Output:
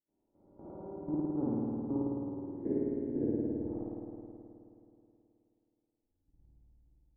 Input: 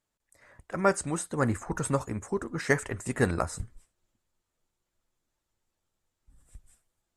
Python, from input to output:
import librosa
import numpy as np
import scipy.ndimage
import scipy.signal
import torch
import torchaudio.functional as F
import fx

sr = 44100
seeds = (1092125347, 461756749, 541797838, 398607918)

p1 = fx.spec_swells(x, sr, rise_s=0.87)
p2 = fx.formant_cascade(p1, sr, vowel='u')
p3 = fx.air_absorb(p2, sr, metres=220.0)
p4 = p3 + fx.echo_single(p3, sr, ms=351, db=-9.0, dry=0)
p5 = fx.spec_box(p4, sr, start_s=2.59, length_s=0.89, low_hz=700.0, high_hz=1400.0, gain_db=-12)
p6 = fx.peak_eq(p5, sr, hz=2500.0, db=-6.5, octaves=1.4)
p7 = fx.level_steps(p6, sr, step_db=17)
y = fx.rev_spring(p7, sr, rt60_s=2.8, pass_ms=(53,), chirp_ms=45, drr_db=-7.0)